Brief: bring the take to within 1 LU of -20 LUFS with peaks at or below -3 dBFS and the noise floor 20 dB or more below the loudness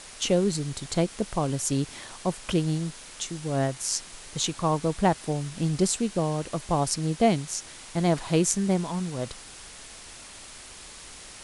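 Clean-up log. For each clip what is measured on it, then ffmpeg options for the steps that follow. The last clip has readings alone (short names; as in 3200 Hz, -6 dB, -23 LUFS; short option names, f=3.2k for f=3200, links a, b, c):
noise floor -45 dBFS; noise floor target -48 dBFS; loudness -27.5 LUFS; peak -5.5 dBFS; loudness target -20.0 LUFS
-> -af "afftdn=nr=6:nf=-45"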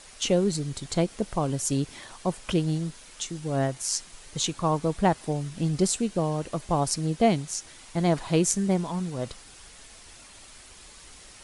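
noise floor -49 dBFS; loudness -27.5 LUFS; peak -6.0 dBFS; loudness target -20.0 LUFS
-> -af "volume=7.5dB,alimiter=limit=-3dB:level=0:latency=1"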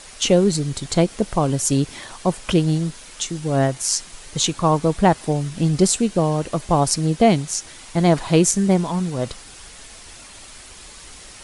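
loudness -20.0 LUFS; peak -3.0 dBFS; noise floor -42 dBFS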